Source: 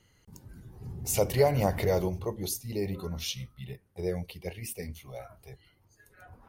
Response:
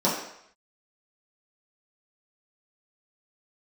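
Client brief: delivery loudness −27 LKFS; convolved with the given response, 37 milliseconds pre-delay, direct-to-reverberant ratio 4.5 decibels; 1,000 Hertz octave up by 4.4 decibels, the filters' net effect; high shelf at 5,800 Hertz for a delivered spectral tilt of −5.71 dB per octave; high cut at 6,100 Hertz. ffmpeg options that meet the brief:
-filter_complex "[0:a]lowpass=6100,equalizer=frequency=1000:width_type=o:gain=6.5,highshelf=frequency=5800:gain=3,asplit=2[link_01][link_02];[1:a]atrim=start_sample=2205,adelay=37[link_03];[link_02][link_03]afir=irnorm=-1:irlink=0,volume=-19dB[link_04];[link_01][link_04]amix=inputs=2:normalize=0"

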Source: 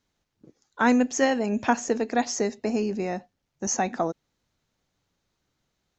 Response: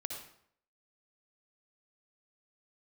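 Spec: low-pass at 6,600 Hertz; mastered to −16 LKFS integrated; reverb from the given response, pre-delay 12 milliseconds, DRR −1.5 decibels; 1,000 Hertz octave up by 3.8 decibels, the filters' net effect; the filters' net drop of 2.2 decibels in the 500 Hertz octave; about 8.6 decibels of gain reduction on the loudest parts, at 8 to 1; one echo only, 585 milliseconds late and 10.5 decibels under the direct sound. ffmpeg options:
-filter_complex "[0:a]lowpass=6600,equalizer=frequency=500:width_type=o:gain=-4.5,equalizer=frequency=1000:width_type=o:gain=7,acompressor=threshold=-22dB:ratio=8,aecho=1:1:585:0.299,asplit=2[link_01][link_02];[1:a]atrim=start_sample=2205,adelay=12[link_03];[link_02][link_03]afir=irnorm=-1:irlink=0,volume=2dB[link_04];[link_01][link_04]amix=inputs=2:normalize=0,volume=9.5dB"

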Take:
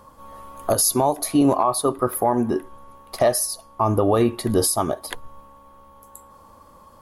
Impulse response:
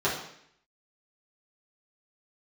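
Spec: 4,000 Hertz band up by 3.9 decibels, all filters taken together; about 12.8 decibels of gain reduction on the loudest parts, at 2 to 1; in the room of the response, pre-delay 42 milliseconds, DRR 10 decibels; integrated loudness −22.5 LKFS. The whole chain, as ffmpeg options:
-filter_complex "[0:a]equalizer=frequency=4000:width_type=o:gain=5,acompressor=threshold=-38dB:ratio=2,asplit=2[link_01][link_02];[1:a]atrim=start_sample=2205,adelay=42[link_03];[link_02][link_03]afir=irnorm=-1:irlink=0,volume=-22.5dB[link_04];[link_01][link_04]amix=inputs=2:normalize=0,volume=10dB"

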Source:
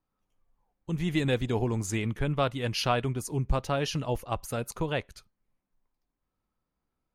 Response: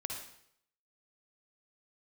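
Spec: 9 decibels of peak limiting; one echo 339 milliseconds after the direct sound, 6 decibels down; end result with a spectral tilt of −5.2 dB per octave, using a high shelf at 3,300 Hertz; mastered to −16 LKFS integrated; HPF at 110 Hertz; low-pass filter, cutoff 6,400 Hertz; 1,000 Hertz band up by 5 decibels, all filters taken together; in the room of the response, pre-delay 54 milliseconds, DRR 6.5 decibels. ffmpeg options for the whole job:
-filter_complex "[0:a]highpass=110,lowpass=6400,equalizer=frequency=1000:width_type=o:gain=6.5,highshelf=frequency=3300:gain=3,alimiter=limit=-17.5dB:level=0:latency=1,aecho=1:1:339:0.501,asplit=2[link_01][link_02];[1:a]atrim=start_sample=2205,adelay=54[link_03];[link_02][link_03]afir=irnorm=-1:irlink=0,volume=-7dB[link_04];[link_01][link_04]amix=inputs=2:normalize=0,volume=13dB"

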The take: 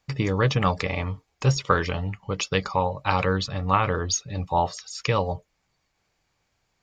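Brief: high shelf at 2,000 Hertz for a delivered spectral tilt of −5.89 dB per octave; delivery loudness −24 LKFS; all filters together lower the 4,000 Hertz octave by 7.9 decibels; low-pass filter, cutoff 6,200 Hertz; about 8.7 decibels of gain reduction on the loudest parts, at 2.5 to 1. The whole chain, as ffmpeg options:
ffmpeg -i in.wav -af "lowpass=6200,highshelf=frequency=2000:gain=-4.5,equalizer=frequency=4000:width_type=o:gain=-5,acompressor=threshold=-29dB:ratio=2.5,volume=8.5dB" out.wav

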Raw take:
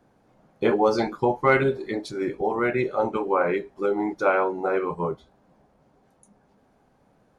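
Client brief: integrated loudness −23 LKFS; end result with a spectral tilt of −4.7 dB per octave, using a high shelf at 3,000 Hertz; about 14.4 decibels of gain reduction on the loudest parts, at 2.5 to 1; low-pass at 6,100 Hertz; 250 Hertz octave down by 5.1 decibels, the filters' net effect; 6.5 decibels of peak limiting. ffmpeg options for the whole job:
ffmpeg -i in.wav -af "lowpass=6100,equalizer=frequency=250:width_type=o:gain=-8,highshelf=frequency=3000:gain=-4,acompressor=threshold=-39dB:ratio=2.5,volume=17dB,alimiter=limit=-12dB:level=0:latency=1" out.wav

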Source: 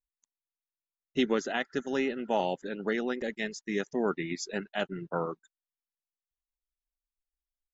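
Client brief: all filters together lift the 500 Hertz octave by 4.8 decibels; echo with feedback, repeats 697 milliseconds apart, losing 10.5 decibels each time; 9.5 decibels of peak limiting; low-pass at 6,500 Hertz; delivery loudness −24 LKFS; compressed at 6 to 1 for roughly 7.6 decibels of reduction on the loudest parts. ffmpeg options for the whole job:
ffmpeg -i in.wav -af "lowpass=6500,equalizer=frequency=500:width_type=o:gain=6,acompressor=threshold=-27dB:ratio=6,alimiter=level_in=2dB:limit=-24dB:level=0:latency=1,volume=-2dB,aecho=1:1:697|1394|2091:0.299|0.0896|0.0269,volume=13.5dB" out.wav

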